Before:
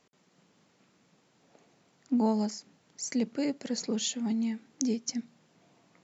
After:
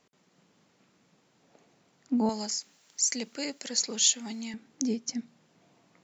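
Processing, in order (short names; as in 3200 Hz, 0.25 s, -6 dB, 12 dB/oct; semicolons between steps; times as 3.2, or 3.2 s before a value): 2.29–4.54 tilt +4 dB/oct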